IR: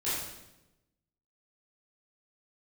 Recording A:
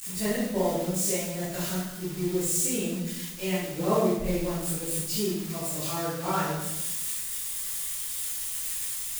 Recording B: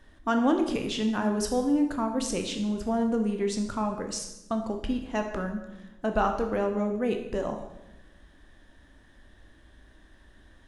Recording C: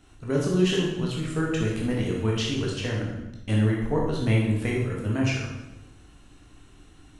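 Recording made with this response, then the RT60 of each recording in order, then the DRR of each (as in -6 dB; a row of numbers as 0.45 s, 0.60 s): A; 0.95 s, 0.95 s, 0.95 s; -12.5 dB, 4.0 dB, -3.5 dB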